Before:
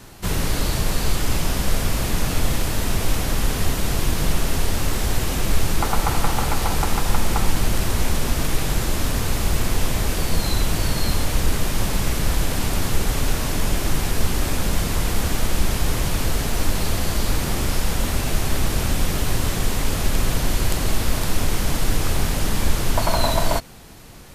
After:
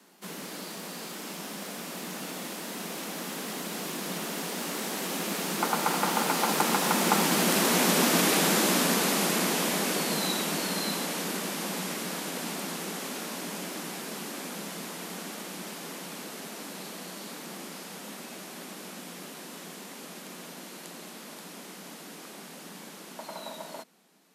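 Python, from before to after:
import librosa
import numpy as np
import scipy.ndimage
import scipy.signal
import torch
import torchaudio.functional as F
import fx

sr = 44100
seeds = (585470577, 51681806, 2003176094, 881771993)

y = fx.doppler_pass(x, sr, speed_mps=12, closest_m=14.0, pass_at_s=8.16)
y = scipy.signal.sosfilt(scipy.signal.butter(12, 170.0, 'highpass', fs=sr, output='sos'), y)
y = y * 10.0 ** (4.0 / 20.0)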